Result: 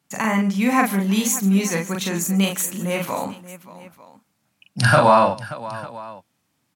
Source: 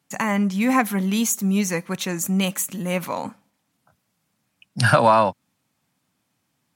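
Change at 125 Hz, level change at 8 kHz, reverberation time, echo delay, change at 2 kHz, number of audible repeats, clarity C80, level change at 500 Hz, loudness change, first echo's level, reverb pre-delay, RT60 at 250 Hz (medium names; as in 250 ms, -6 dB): +2.0 dB, +2.0 dB, no reverb, 41 ms, +2.0 dB, 4, no reverb, +2.0 dB, +1.5 dB, -3.0 dB, no reverb, no reverb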